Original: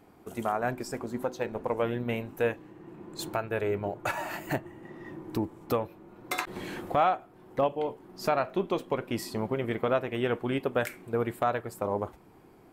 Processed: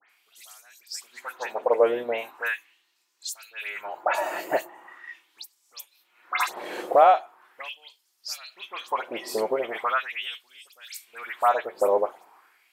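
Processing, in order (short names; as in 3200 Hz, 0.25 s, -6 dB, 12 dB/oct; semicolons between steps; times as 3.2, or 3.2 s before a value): LFO high-pass sine 0.4 Hz 480–5600 Hz; dispersion highs, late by 99 ms, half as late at 2900 Hz; gain +3.5 dB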